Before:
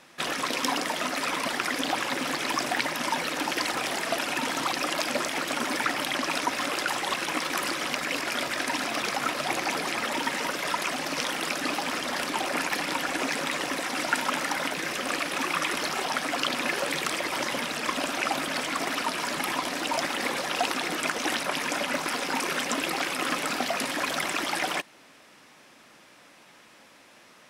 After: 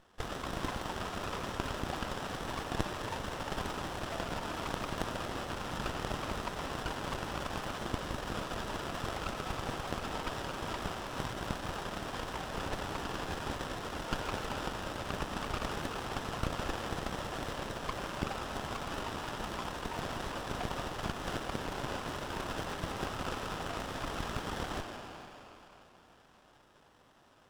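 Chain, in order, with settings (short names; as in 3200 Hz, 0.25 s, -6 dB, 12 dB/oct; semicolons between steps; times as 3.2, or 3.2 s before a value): band-pass 2600 Hz, Q 0.87; digital reverb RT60 4.1 s, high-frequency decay 0.55×, pre-delay 45 ms, DRR 3 dB; running maximum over 17 samples; gain -3.5 dB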